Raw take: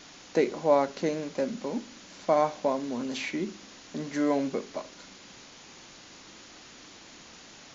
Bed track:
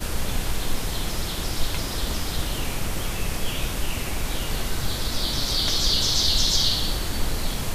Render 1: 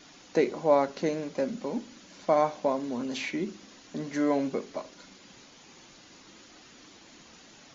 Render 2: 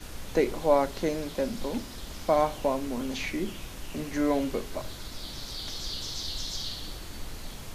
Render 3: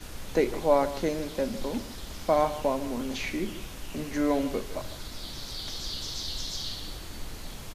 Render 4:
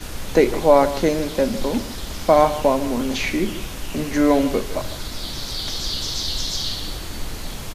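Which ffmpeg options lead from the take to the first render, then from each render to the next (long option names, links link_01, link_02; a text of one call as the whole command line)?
ffmpeg -i in.wav -af "afftdn=noise_reduction=6:noise_floor=-50" out.wav
ffmpeg -i in.wav -i bed.wav -filter_complex "[1:a]volume=-14dB[link_01];[0:a][link_01]amix=inputs=2:normalize=0" out.wav
ffmpeg -i in.wav -af "aecho=1:1:154:0.188" out.wav
ffmpeg -i in.wav -af "volume=9.5dB,alimiter=limit=-2dB:level=0:latency=1" out.wav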